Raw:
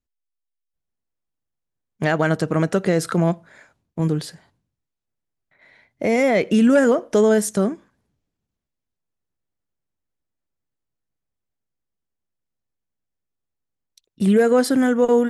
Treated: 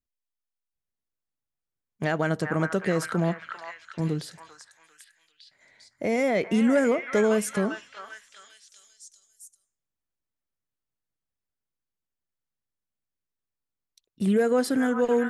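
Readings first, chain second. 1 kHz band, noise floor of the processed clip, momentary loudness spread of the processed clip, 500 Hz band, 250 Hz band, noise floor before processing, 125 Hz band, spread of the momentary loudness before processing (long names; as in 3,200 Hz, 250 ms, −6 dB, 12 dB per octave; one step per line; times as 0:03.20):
−5.5 dB, below −85 dBFS, 17 LU, −6.5 dB, −6.5 dB, −82 dBFS, −6.5 dB, 11 LU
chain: echo through a band-pass that steps 397 ms, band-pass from 1,300 Hz, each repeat 0.7 octaves, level −1 dB
level −6.5 dB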